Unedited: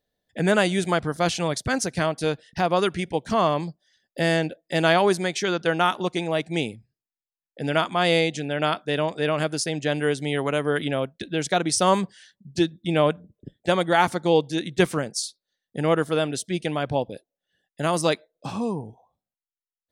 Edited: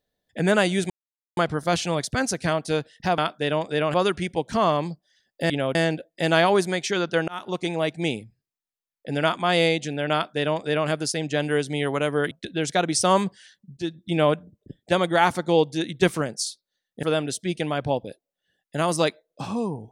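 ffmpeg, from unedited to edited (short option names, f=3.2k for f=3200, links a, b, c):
-filter_complex "[0:a]asplit=10[a][b][c][d][e][f][g][h][i][j];[a]atrim=end=0.9,asetpts=PTS-STARTPTS,afade=t=out:st=0.896:d=0.004:c=hsin,apad=pad_dur=0.47[k];[b]atrim=start=0.9:end=2.712,asetpts=PTS-STARTPTS,afade=t=in:d=0.004:c=hsin[l];[c]atrim=start=8.648:end=9.412[m];[d]atrim=start=2.708:end=4.272[n];[e]atrim=start=10.828:end=11.082[o];[f]atrim=start=4.268:end=5.8,asetpts=PTS-STARTPTS,afade=t=out:st=1.528:d=0.004:c=hsin[p];[g]atrim=start=5.8:end=10.832,asetpts=PTS-STARTPTS,afade=t=in:d=0.46:c=qsin[q];[h]atrim=start=11.078:end=12.54,asetpts=PTS-STARTPTS,afade=t=out:st=1.458:d=0.004:c=hsin:silence=0.188365[r];[i]atrim=start=12.54:end=15.802,asetpts=PTS-STARTPTS,afade=t=in:d=0.27:silence=0.188365[s];[j]atrim=start=16.078[t];[k][l]concat=n=2:v=0:a=1[u];[u][m]acrossfade=d=0.004:c1=hsin:c2=hsin[v];[v][n]acrossfade=d=0.004:c1=hsin:c2=hsin[w];[w][o]acrossfade=d=0.004:c1=hsin:c2=hsin[x];[p][q]concat=n=2:v=0:a=1[y];[x][y]acrossfade=d=0.004:c1=hsin:c2=hsin[z];[r][s]concat=n=2:v=0:a=1[aa];[z][aa]acrossfade=d=0.004:c1=hsin:c2=hsin[ab];[ab][t]acrossfade=d=0.004:c1=hsin:c2=hsin"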